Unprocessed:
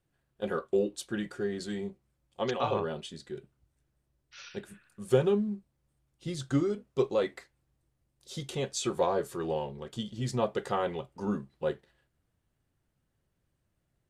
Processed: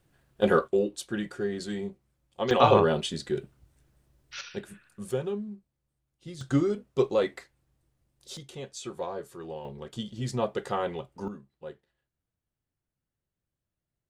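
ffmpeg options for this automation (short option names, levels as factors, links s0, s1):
-af "asetnsamples=n=441:p=0,asendcmd='0.68 volume volume 2dB;2.51 volume volume 10.5dB;4.41 volume volume 3dB;5.11 volume volume -6dB;6.41 volume volume 3dB;8.37 volume volume -7dB;9.65 volume volume 0.5dB;11.28 volume volume -10.5dB',volume=3.35"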